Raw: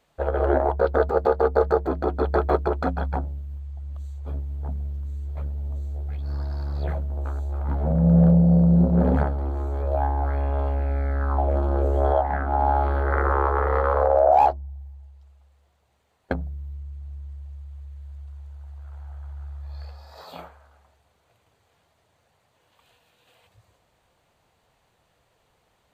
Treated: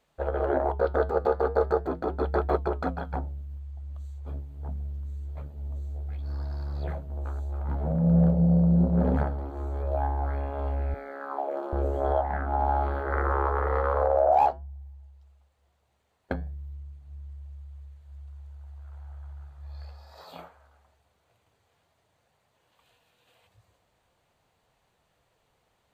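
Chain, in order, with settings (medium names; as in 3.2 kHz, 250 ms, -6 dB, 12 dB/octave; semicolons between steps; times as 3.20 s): 10.94–11.73 s: high-pass 320 Hz 24 dB/octave; flange 0.4 Hz, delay 4.5 ms, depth 6.5 ms, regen -81%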